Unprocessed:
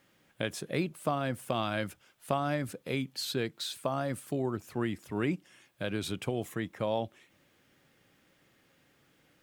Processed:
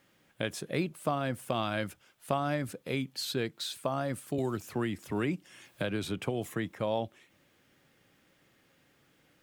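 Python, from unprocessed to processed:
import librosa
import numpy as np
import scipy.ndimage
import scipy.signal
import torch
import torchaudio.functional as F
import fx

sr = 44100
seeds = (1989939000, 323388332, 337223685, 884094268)

y = fx.band_squash(x, sr, depth_pct=70, at=(4.38, 6.75))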